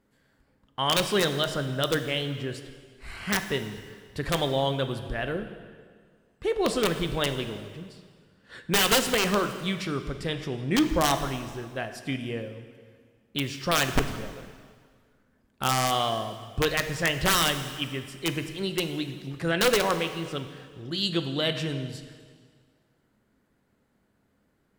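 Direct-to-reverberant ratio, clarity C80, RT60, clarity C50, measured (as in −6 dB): 7.5 dB, 10.5 dB, 1.8 s, 9.0 dB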